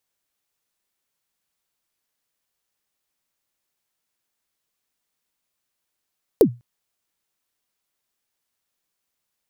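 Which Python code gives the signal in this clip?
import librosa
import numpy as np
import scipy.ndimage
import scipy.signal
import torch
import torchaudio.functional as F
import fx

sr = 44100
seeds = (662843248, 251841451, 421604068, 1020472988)

y = fx.drum_kick(sr, seeds[0], length_s=0.2, level_db=-5, start_hz=500.0, end_hz=120.0, sweep_ms=81.0, decay_s=0.25, click=True)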